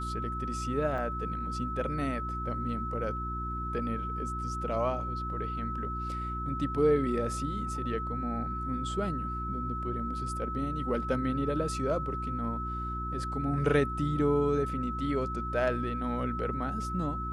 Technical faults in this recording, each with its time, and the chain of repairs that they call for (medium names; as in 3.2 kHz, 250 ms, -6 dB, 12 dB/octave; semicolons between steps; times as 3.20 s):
hum 60 Hz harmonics 6 -37 dBFS
whine 1.3 kHz -35 dBFS
0.98 s: dropout 3.5 ms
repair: de-hum 60 Hz, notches 6; band-stop 1.3 kHz, Q 30; interpolate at 0.98 s, 3.5 ms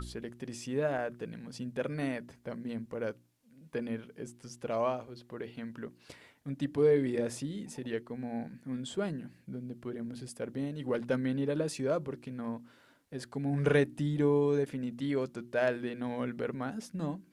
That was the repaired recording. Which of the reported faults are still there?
nothing left